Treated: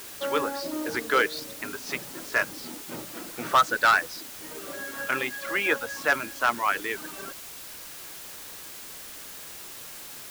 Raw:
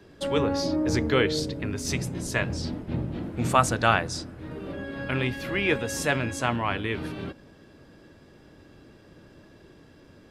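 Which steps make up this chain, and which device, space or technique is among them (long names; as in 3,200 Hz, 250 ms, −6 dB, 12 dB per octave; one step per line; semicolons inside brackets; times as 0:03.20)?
reverb reduction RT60 1.1 s
drive-through speaker (band-pass filter 370–3,900 Hz; parametric band 1,400 Hz +9 dB 0.77 octaves; hard clipping −13.5 dBFS, distortion −9 dB; white noise bed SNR 12 dB)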